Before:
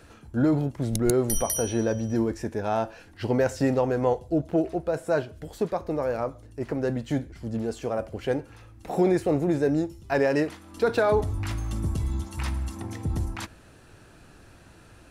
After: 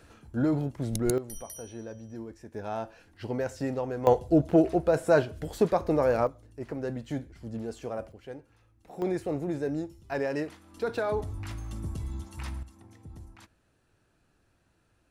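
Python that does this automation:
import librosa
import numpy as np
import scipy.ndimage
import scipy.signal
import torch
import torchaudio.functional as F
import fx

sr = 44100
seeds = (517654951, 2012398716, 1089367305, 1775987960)

y = fx.gain(x, sr, db=fx.steps((0.0, -4.0), (1.18, -15.5), (2.54, -8.0), (4.07, 3.0), (6.27, -6.5), (8.12, -15.5), (9.02, -7.5), (12.63, -18.0)))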